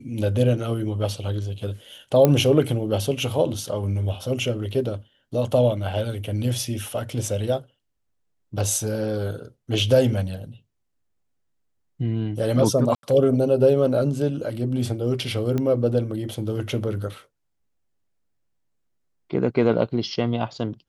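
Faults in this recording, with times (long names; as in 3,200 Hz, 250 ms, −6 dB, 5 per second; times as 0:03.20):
0:02.25: click −5 dBFS
0:12.95–0:13.03: drop-out 82 ms
0:15.58: click −14 dBFS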